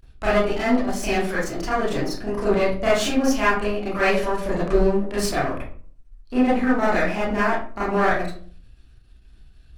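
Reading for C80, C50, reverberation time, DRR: 7.5 dB, 1.5 dB, 0.45 s, −10.0 dB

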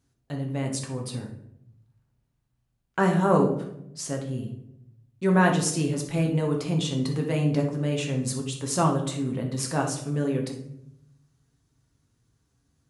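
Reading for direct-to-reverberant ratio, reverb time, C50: 0.5 dB, 0.80 s, 6.5 dB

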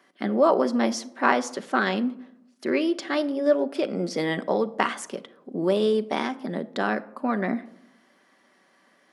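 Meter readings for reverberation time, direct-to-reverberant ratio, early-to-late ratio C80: 0.80 s, 10.0 dB, 21.0 dB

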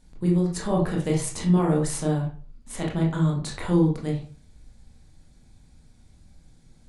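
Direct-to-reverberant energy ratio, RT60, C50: −2.5 dB, 0.40 s, 7.0 dB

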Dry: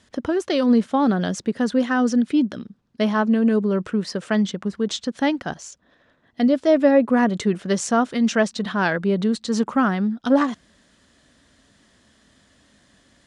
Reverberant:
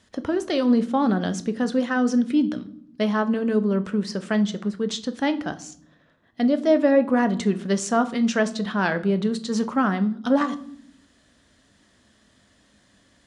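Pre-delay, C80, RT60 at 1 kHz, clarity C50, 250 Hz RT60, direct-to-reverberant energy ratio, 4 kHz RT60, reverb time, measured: 10 ms, 21.0 dB, 0.55 s, 16.5 dB, 1.1 s, 10.0 dB, 0.45 s, 0.65 s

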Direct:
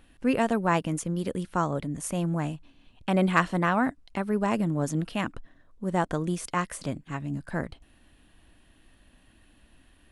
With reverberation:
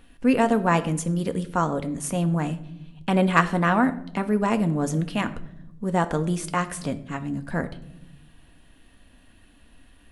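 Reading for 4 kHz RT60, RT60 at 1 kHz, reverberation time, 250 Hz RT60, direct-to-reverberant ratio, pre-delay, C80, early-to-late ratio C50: 0.50 s, 0.65 s, 0.80 s, 1.4 s, 8.0 dB, 4 ms, 18.0 dB, 15.0 dB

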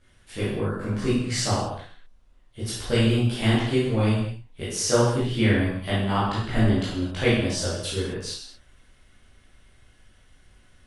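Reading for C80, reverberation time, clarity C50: 3.5 dB, non-exponential decay, −0.5 dB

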